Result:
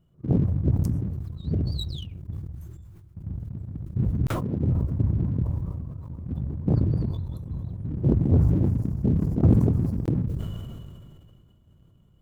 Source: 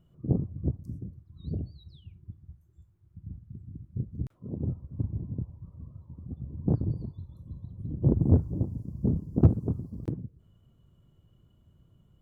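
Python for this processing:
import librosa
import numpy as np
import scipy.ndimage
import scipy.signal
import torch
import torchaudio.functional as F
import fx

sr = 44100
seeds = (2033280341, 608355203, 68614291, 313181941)

y = fx.rider(x, sr, range_db=3, speed_s=0.5)
y = fx.leveller(y, sr, passes=1)
y = fx.sustainer(y, sr, db_per_s=25.0)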